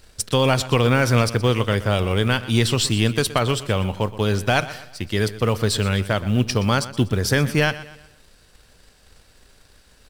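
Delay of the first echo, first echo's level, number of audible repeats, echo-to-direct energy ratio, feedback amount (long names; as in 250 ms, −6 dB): 122 ms, −16.0 dB, 3, −15.0 dB, 41%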